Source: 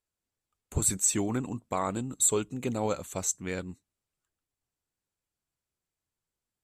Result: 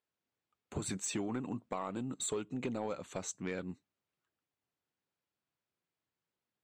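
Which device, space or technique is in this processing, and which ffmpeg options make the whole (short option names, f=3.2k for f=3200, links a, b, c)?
AM radio: -af "highpass=140,lowpass=3.9k,acompressor=threshold=-33dB:ratio=6,asoftclip=type=tanh:threshold=-27dB,volume=1dB"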